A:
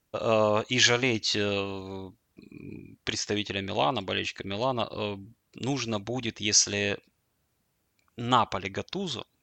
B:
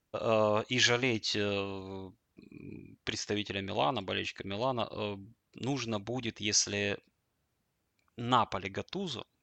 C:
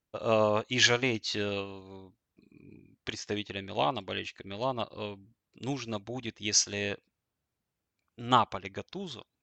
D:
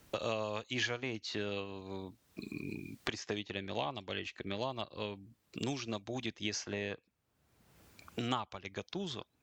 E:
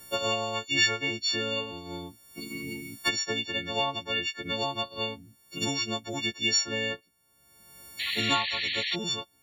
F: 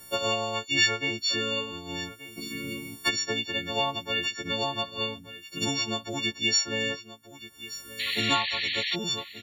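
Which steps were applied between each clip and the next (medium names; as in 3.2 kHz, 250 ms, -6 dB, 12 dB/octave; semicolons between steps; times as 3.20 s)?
treble shelf 7 kHz -6.5 dB; trim -4 dB
upward expansion 1.5:1, over -44 dBFS; trim +4 dB
three bands compressed up and down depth 100%; trim -6 dB
partials quantised in pitch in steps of 4 st; painted sound noise, 7.99–8.96 s, 1.7–4.5 kHz -36 dBFS; trim +4.5 dB
delay 1179 ms -15.5 dB; trim +1 dB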